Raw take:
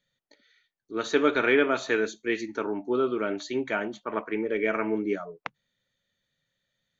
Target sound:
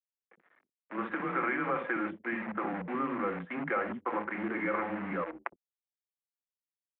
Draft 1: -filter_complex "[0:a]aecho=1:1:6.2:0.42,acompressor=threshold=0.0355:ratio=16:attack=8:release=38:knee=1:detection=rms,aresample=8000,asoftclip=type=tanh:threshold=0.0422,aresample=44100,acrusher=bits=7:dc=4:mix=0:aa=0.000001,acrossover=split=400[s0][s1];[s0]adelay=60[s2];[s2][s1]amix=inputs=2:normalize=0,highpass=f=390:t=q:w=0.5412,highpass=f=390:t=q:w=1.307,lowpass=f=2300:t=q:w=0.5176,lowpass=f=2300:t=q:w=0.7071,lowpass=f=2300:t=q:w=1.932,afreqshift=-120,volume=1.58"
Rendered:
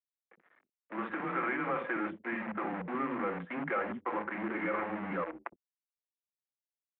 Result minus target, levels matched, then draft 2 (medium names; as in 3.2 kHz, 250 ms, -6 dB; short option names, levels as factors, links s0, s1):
saturation: distortion +13 dB
-filter_complex "[0:a]aecho=1:1:6.2:0.42,acompressor=threshold=0.0355:ratio=16:attack=8:release=38:knee=1:detection=rms,aresample=8000,asoftclip=type=tanh:threshold=0.119,aresample=44100,acrusher=bits=7:dc=4:mix=0:aa=0.000001,acrossover=split=400[s0][s1];[s0]adelay=60[s2];[s2][s1]amix=inputs=2:normalize=0,highpass=f=390:t=q:w=0.5412,highpass=f=390:t=q:w=1.307,lowpass=f=2300:t=q:w=0.5176,lowpass=f=2300:t=q:w=0.7071,lowpass=f=2300:t=q:w=1.932,afreqshift=-120,volume=1.58"